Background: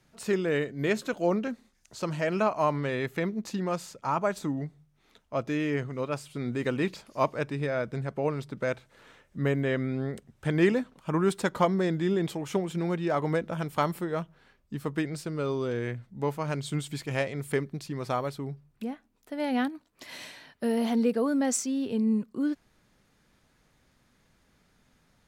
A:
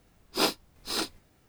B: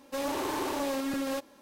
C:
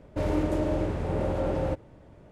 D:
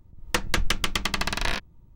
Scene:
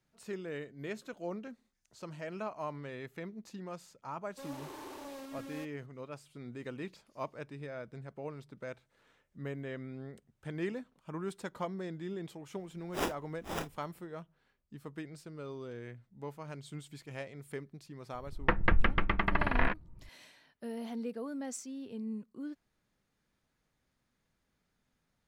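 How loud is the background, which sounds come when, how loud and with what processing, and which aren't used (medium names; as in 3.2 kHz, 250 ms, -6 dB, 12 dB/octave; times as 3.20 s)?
background -13.5 dB
4.25 s: add B -14.5 dB
12.59 s: add A -7.5 dB + sample-rate reducer 4.3 kHz
18.14 s: add D -0.5 dB + low-pass 2.1 kHz 24 dB/octave
not used: C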